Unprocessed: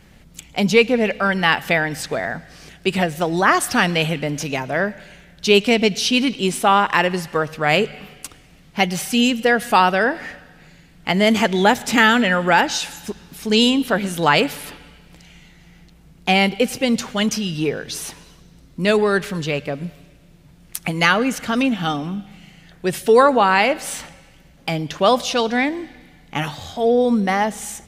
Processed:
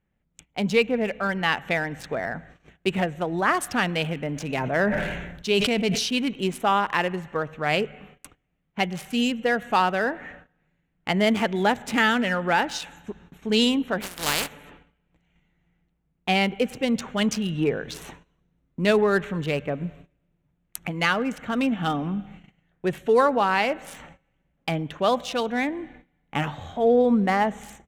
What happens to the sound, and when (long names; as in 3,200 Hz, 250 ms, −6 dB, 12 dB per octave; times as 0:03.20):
0:04.34–0:06.06: level that may fall only so fast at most 31 dB per second
0:14.00–0:14.50: compressing power law on the bin magnitudes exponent 0.26
whole clip: adaptive Wiener filter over 9 samples; noise gate −42 dBFS, range −19 dB; automatic gain control gain up to 7 dB; level −7.5 dB